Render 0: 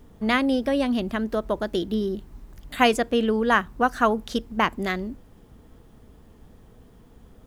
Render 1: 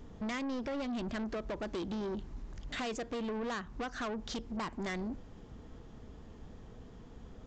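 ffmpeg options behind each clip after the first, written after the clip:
-af "acompressor=threshold=-26dB:ratio=6,aresample=16000,asoftclip=type=tanh:threshold=-34dB,aresample=44100"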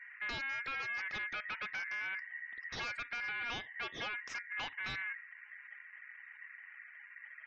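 -af "lowpass=f=4.4k:w=0.5412,lowpass=f=4.4k:w=1.3066,afftfilt=real='re*gte(hypot(re,im),0.00224)':imag='im*gte(hypot(re,im),0.00224)':win_size=1024:overlap=0.75,aeval=exprs='val(0)*sin(2*PI*1900*n/s)':c=same"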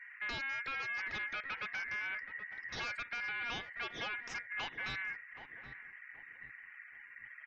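-filter_complex "[0:a]asplit=2[a][b];[b]adelay=775,lowpass=f=830:p=1,volume=-8dB,asplit=2[c][d];[d]adelay=775,lowpass=f=830:p=1,volume=0.38,asplit=2[e][f];[f]adelay=775,lowpass=f=830:p=1,volume=0.38,asplit=2[g][h];[h]adelay=775,lowpass=f=830:p=1,volume=0.38[i];[a][c][e][g][i]amix=inputs=5:normalize=0"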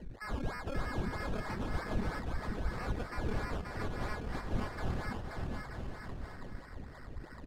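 -af "acrusher=samples=18:mix=1:aa=0.000001:lfo=1:lforange=10.8:lforate=3.1,aemphasis=mode=reproduction:type=bsi,aecho=1:1:530|927.5|1226|1449|1617:0.631|0.398|0.251|0.158|0.1,volume=-2.5dB"

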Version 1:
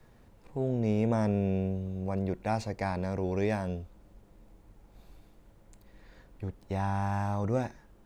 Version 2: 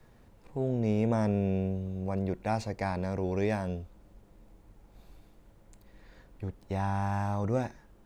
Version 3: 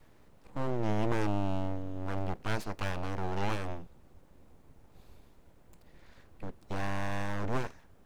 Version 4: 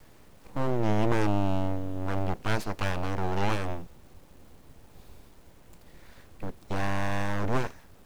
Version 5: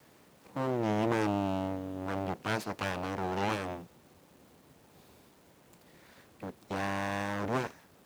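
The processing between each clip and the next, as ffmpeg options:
-af anull
-af "aeval=exprs='abs(val(0))':c=same"
-af "acrusher=bits=10:mix=0:aa=0.000001,volume=5dB"
-af "highpass=140,volume=-2dB"

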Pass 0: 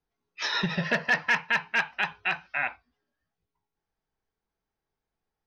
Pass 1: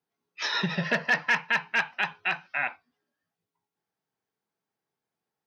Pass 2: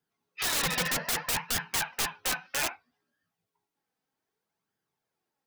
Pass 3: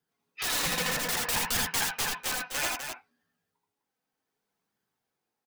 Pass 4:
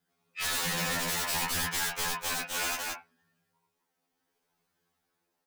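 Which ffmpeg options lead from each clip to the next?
-af "highpass=f=120:w=0.5412,highpass=f=120:w=1.3066"
-af "aeval=exprs='(mod(16.8*val(0)+1,2)-1)/16.8':c=same,flanger=delay=0.6:depth=3.4:regen=45:speed=0.63:shape=sinusoidal,volume=6dB"
-af "tremolo=f=0.65:d=0.32,aecho=1:1:79|83|93|246|254:0.562|0.562|0.141|0.178|0.447"
-af "asoftclip=type=tanh:threshold=-32.5dB,afftfilt=real='re*2*eq(mod(b,4),0)':imag='im*2*eq(mod(b,4),0)':win_size=2048:overlap=0.75,volume=6.5dB"

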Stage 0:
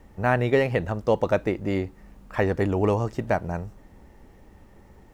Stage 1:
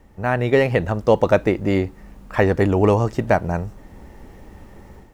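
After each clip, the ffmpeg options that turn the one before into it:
-af "dynaudnorm=f=310:g=3:m=9dB"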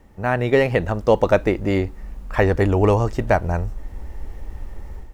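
-af "asubboost=boost=7:cutoff=62"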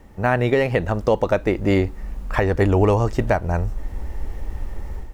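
-af "alimiter=limit=-11dB:level=0:latency=1:release=473,volume=4dB"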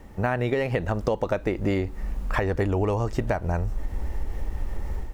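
-af "acompressor=threshold=-23dB:ratio=4,volume=1dB"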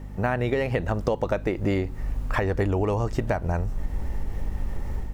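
-af "aeval=exprs='val(0)+0.0158*(sin(2*PI*50*n/s)+sin(2*PI*2*50*n/s)/2+sin(2*PI*3*50*n/s)/3+sin(2*PI*4*50*n/s)/4+sin(2*PI*5*50*n/s)/5)':c=same"

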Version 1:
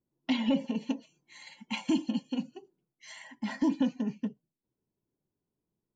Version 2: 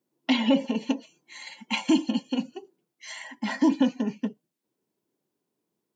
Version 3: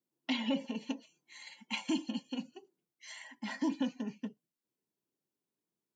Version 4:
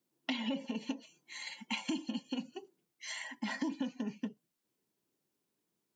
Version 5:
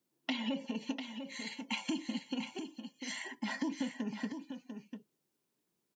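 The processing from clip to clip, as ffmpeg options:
-af "highpass=250,volume=8dB"
-af "equalizer=f=470:w=0.46:g=-4.5,volume=-8dB"
-af "acompressor=threshold=-41dB:ratio=4,volume=6.5dB"
-af "aecho=1:1:696:0.398"

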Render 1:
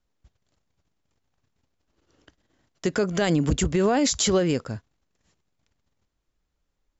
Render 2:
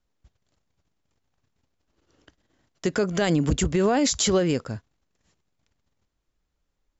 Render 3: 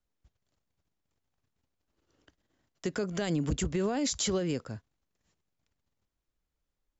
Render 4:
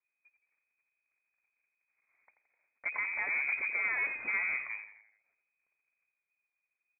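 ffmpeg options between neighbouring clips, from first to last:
-af anull
-filter_complex "[0:a]acrossover=split=370|3000[a][b][c];[b]acompressor=threshold=-28dB:ratio=2[d];[a][d][c]amix=inputs=3:normalize=0,volume=-7.5dB"
-filter_complex "[0:a]aeval=exprs='0.1*(cos(1*acos(clip(val(0)/0.1,-1,1)))-cos(1*PI/2))+0.0126*(cos(8*acos(clip(val(0)/0.1,-1,1)))-cos(8*PI/2))':c=same,lowpass=f=2.1k:t=q:w=0.5098,lowpass=f=2.1k:t=q:w=0.6013,lowpass=f=2.1k:t=q:w=0.9,lowpass=f=2.1k:t=q:w=2.563,afreqshift=-2500,asplit=6[a][b][c][d][e][f];[b]adelay=85,afreqshift=-56,volume=-10.5dB[g];[c]adelay=170,afreqshift=-112,volume=-16.9dB[h];[d]adelay=255,afreqshift=-168,volume=-23.3dB[i];[e]adelay=340,afreqshift=-224,volume=-29.6dB[j];[f]adelay=425,afreqshift=-280,volume=-36dB[k];[a][g][h][i][j][k]amix=inputs=6:normalize=0,volume=-3.5dB"

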